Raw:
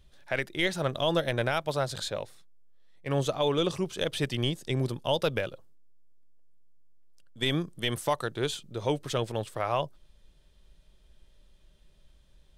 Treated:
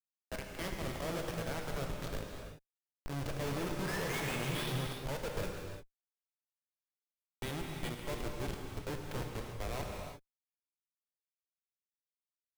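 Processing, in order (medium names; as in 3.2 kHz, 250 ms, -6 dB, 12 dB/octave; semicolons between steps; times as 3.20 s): painted sound rise, 3.79–4.73 s, 1.5–3.9 kHz -30 dBFS; Schmitt trigger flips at -27.5 dBFS; gated-style reverb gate 370 ms flat, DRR 0.5 dB; trim -6.5 dB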